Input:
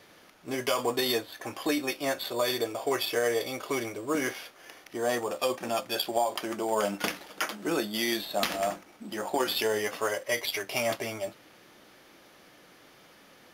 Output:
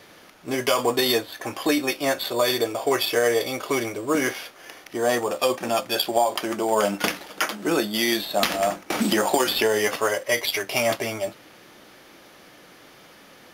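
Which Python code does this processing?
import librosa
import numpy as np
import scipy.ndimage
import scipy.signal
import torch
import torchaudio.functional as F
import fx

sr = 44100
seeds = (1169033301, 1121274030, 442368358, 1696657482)

y = fx.band_squash(x, sr, depth_pct=100, at=(8.9, 9.96))
y = y * 10.0 ** (6.5 / 20.0)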